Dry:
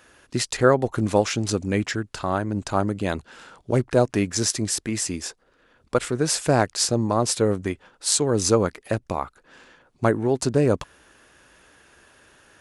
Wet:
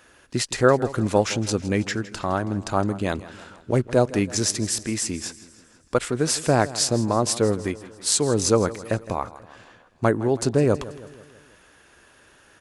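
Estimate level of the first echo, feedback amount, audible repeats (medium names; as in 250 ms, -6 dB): -17.0 dB, 54%, 4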